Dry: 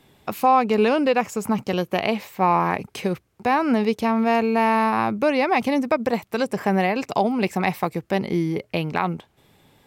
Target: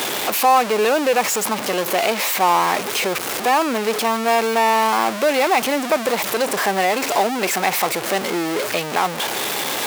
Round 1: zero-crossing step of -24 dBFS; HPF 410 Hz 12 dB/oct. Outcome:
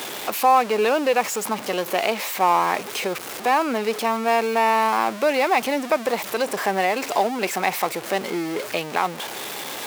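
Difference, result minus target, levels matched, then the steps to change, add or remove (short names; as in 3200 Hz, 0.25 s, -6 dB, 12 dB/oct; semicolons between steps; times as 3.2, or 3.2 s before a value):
zero-crossing step: distortion -6 dB
change: zero-crossing step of -15.5 dBFS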